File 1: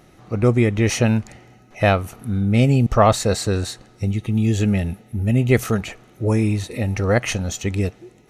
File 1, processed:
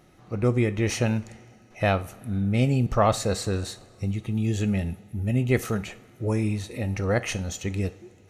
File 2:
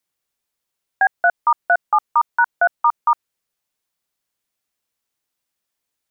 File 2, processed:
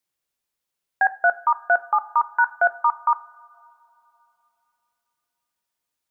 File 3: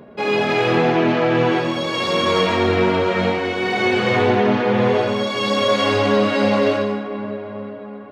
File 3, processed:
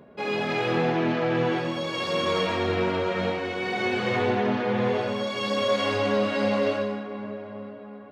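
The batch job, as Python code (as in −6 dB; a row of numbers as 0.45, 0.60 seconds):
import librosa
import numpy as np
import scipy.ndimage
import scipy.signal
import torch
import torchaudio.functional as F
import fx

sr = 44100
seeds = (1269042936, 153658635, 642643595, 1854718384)

y = fx.rev_double_slope(x, sr, seeds[0], early_s=0.37, late_s=3.2, knee_db=-21, drr_db=12.0)
y = y * 10.0 ** (-26 / 20.0) / np.sqrt(np.mean(np.square(y)))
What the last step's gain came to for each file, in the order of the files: −6.5, −3.0, −8.0 decibels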